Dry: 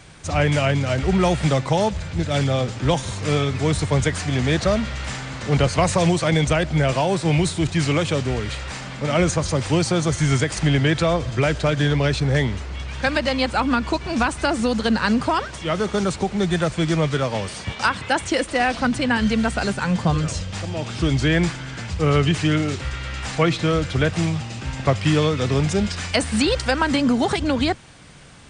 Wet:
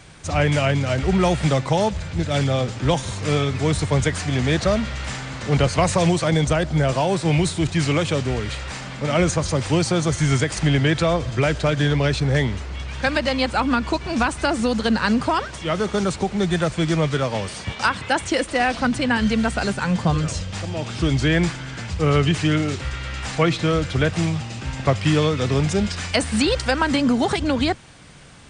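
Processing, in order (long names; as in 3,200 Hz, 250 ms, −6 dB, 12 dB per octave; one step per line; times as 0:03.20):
0:06.25–0:07.01: parametric band 2,400 Hz −5 dB 0.77 octaves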